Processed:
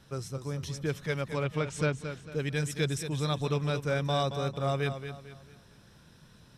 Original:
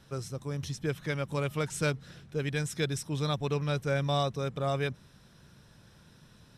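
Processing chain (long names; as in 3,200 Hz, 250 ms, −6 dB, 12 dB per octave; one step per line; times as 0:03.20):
0:01.28–0:02.10: treble cut that deepens with the level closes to 2,800 Hz, closed at −24 dBFS
feedback echo with a swinging delay time 224 ms, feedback 36%, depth 53 cents, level −9.5 dB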